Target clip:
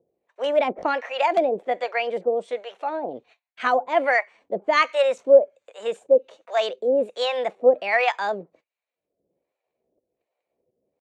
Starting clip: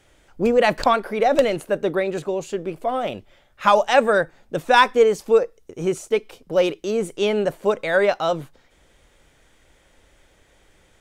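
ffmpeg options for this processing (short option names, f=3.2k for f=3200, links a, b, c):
-filter_complex "[0:a]agate=range=-32dB:threshold=-49dB:ratio=16:detection=peak,acrossover=split=500[a][b];[a]acompressor=mode=upward:threshold=-44dB:ratio=2.5[c];[c][b]amix=inputs=2:normalize=0,acrossover=split=570[d][e];[d]aeval=exprs='val(0)*(1-1/2+1/2*cos(2*PI*1.3*n/s))':c=same[f];[e]aeval=exprs='val(0)*(1-1/2-1/2*cos(2*PI*1.3*n/s))':c=same[g];[f][g]amix=inputs=2:normalize=0,asetrate=53981,aresample=44100,atempo=0.816958,highpass=280,equalizer=f=510:t=q:w=4:g=7,equalizer=f=2.3k:t=q:w=4:g=6,equalizer=f=5.1k:t=q:w=4:g=-9,lowpass=f=6.9k:w=0.5412,lowpass=f=6.9k:w=1.3066,volume=1dB"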